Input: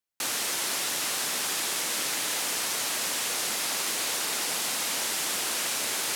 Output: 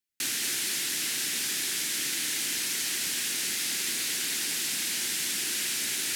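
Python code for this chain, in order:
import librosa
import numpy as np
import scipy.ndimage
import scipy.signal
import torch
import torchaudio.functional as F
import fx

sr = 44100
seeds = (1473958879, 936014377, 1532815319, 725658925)

y = fx.band_shelf(x, sr, hz=770.0, db=-14.0, octaves=1.7)
y = fx.rider(y, sr, range_db=10, speed_s=0.5)
y = y + 10.0 ** (-5.0 / 20.0) * np.pad(y, (int(228 * sr / 1000.0), 0))[:len(y)]
y = F.gain(torch.from_numpy(y), -1.5).numpy()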